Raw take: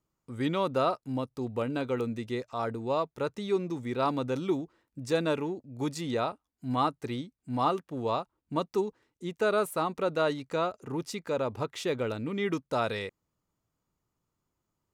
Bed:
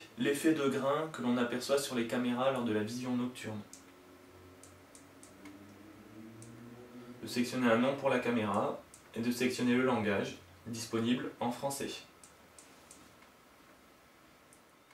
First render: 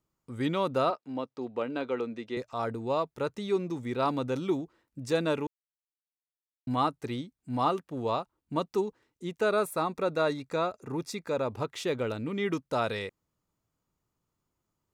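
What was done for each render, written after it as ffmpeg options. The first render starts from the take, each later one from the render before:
ffmpeg -i in.wav -filter_complex "[0:a]asettb=1/sr,asplit=3[link_01][link_02][link_03];[link_01]atrim=end=0.904[link_04];[link_02]atrim=start=0.9:end=2.37,asetpts=PTS-STARTPTS,afade=type=in:duration=0.004:curve=qsin,afade=type=out:start_time=1.466:duration=0.004:curve=qsin,highpass=260,lowpass=4400[link_05];[link_03]atrim=start=2.366[link_06];[link_04][link_05]acrossfade=duration=0.004:curve1=hsin:curve2=qsin[link_07];[link_07][link_06]acrossfade=duration=0.004:curve1=qsin:curve2=hsin,asettb=1/sr,asplit=3[link_08][link_09][link_10];[link_08]atrim=end=9.504[link_11];[link_09]atrim=start=9.5:end=11.51,asetpts=PTS-STARTPTS,afade=type=in:duration=0.004:curve=qsin,afade=type=out:start_time=2.006:duration=0.004:curve=qsin,asuperstop=centerf=3000:order=12:qfactor=7.4[link_12];[link_10]atrim=start=11.506[link_13];[link_11][link_12]acrossfade=duration=0.004:curve1=hsin:curve2=qsin[link_14];[link_14][link_13]acrossfade=duration=0.004:curve1=qsin:curve2=hsin,asplit=3[link_15][link_16][link_17];[link_15]atrim=end=5.47,asetpts=PTS-STARTPTS,afade=type=out:start_time=5.466:duration=0.004:curve=hsin[link_18];[link_16]atrim=start=5.47:end=6.67,asetpts=PTS-STARTPTS,volume=0[link_19];[link_17]atrim=start=6.67,asetpts=PTS-STARTPTS,afade=type=in:duration=0.004:curve=hsin[link_20];[link_18][link_19][link_20]concat=n=3:v=0:a=1" out.wav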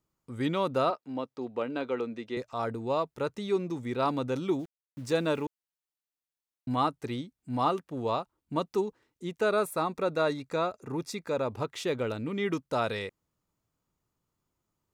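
ffmpeg -i in.wav -filter_complex "[0:a]asettb=1/sr,asplit=3[link_01][link_02][link_03];[link_01]atrim=end=4.594[link_04];[link_02]atrim=start=4.59:end=5.46,asetpts=PTS-STARTPTS,afade=type=in:duration=0.004:curve=qsin,afade=type=out:start_time=0.866:duration=0.004:curve=qsin,aeval=exprs='val(0)*gte(abs(val(0)),0.00299)':channel_layout=same[link_05];[link_03]atrim=start=5.456[link_06];[link_04][link_05]acrossfade=duration=0.004:curve1=hsin:curve2=qsin[link_07];[link_07][link_06]acrossfade=duration=0.004:curve1=qsin:curve2=hsin" out.wav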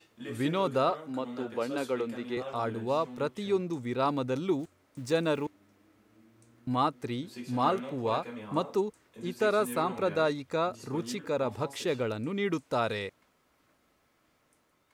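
ffmpeg -i in.wav -i bed.wav -filter_complex "[1:a]volume=-9.5dB[link_01];[0:a][link_01]amix=inputs=2:normalize=0" out.wav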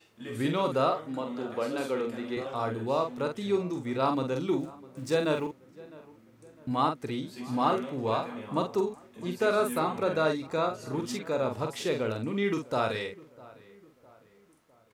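ffmpeg -i in.wav -filter_complex "[0:a]asplit=2[link_01][link_02];[link_02]adelay=45,volume=-5.5dB[link_03];[link_01][link_03]amix=inputs=2:normalize=0,asplit=2[link_04][link_05];[link_05]adelay=655,lowpass=frequency=2000:poles=1,volume=-21dB,asplit=2[link_06][link_07];[link_07]adelay=655,lowpass=frequency=2000:poles=1,volume=0.48,asplit=2[link_08][link_09];[link_09]adelay=655,lowpass=frequency=2000:poles=1,volume=0.48[link_10];[link_04][link_06][link_08][link_10]amix=inputs=4:normalize=0" out.wav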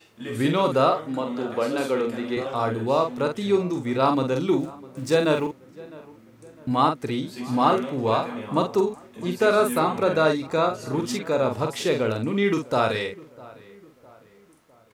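ffmpeg -i in.wav -af "volume=6.5dB" out.wav

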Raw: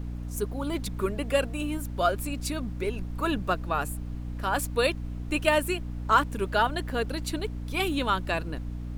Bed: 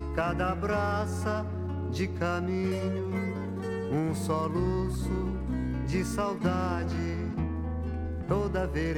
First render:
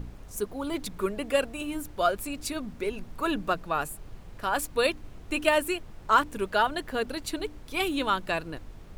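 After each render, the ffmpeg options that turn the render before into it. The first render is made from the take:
ffmpeg -i in.wav -af "bandreject=frequency=60:width_type=h:width=4,bandreject=frequency=120:width_type=h:width=4,bandreject=frequency=180:width_type=h:width=4,bandreject=frequency=240:width_type=h:width=4,bandreject=frequency=300:width_type=h:width=4" out.wav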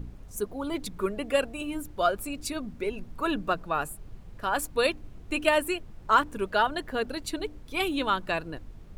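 ffmpeg -i in.wav -af "afftdn=noise_reduction=6:noise_floor=-46" out.wav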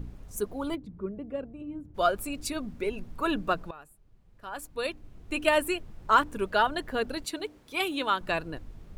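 ffmpeg -i in.wav -filter_complex "[0:a]asplit=3[link_01][link_02][link_03];[link_01]afade=type=out:start_time=0.74:duration=0.02[link_04];[link_02]bandpass=frequency=140:width_type=q:width=0.78,afade=type=in:start_time=0.74:duration=0.02,afade=type=out:start_time=1.94:duration=0.02[link_05];[link_03]afade=type=in:start_time=1.94:duration=0.02[link_06];[link_04][link_05][link_06]amix=inputs=3:normalize=0,asettb=1/sr,asplit=3[link_07][link_08][link_09];[link_07]atrim=end=7.244[link_10];[link_08]atrim=start=7.24:end=8.21,asetpts=PTS-STARTPTS,afade=type=in:duration=0.004:curve=qsin,afade=type=out:start_time=0.966:duration=0.004:curve=qsin,highpass=frequency=340:poles=1[link_11];[link_09]atrim=start=8.206[link_12];[link_10][link_11]acrossfade=duration=0.004:curve1=hsin:curve2=qsin[link_13];[link_13][link_12]acrossfade=duration=0.004:curve1=qsin:curve2=hsin,asplit=2[link_14][link_15];[link_14]atrim=end=3.71,asetpts=PTS-STARTPTS,afade=type=out:start_time=3.706:duration=0.004:curve=hsin:silence=0.105925[link_16];[link_15]atrim=start=3.71,asetpts=PTS-STARTPTS,afade=type=in:duration=1.86:curve=qua:silence=0.105925[link_17];[link_16][link_17]concat=n=2:v=0:a=1" out.wav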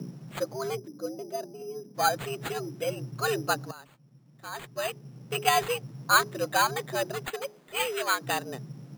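ffmpeg -i in.wav -af "afreqshift=120,acrusher=samples=8:mix=1:aa=0.000001" out.wav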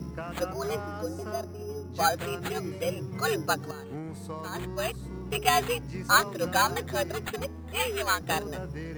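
ffmpeg -i in.wav -i bed.wav -filter_complex "[1:a]volume=-9dB[link_01];[0:a][link_01]amix=inputs=2:normalize=0" out.wav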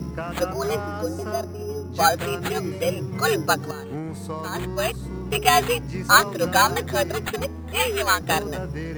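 ffmpeg -i in.wav -af "volume=6.5dB,alimiter=limit=-3dB:level=0:latency=1" out.wav

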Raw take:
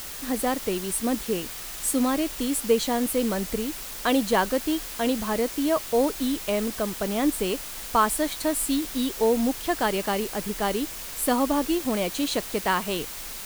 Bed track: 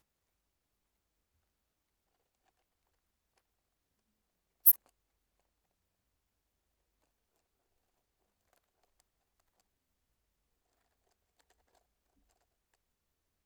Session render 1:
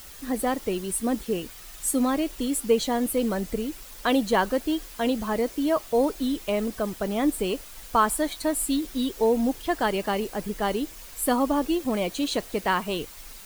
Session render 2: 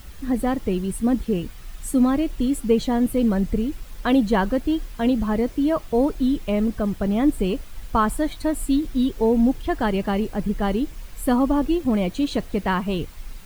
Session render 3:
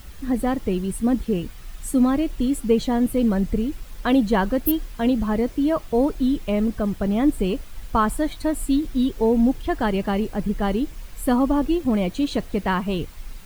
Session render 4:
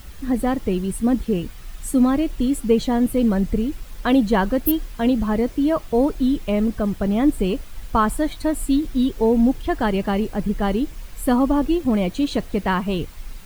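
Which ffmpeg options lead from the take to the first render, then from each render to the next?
ffmpeg -i in.wav -af "afftdn=noise_reduction=9:noise_floor=-37" out.wav
ffmpeg -i in.wav -af "bass=frequency=250:gain=13,treble=frequency=4000:gain=-7" out.wav
ffmpeg -i in.wav -i bed.wav -filter_complex "[1:a]volume=-4.5dB[link_01];[0:a][link_01]amix=inputs=2:normalize=0" out.wav
ffmpeg -i in.wav -af "volume=1.5dB" out.wav

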